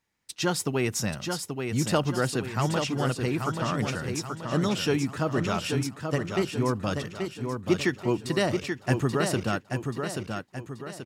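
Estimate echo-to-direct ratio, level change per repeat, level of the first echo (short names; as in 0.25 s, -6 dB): -4.5 dB, -7.0 dB, -5.5 dB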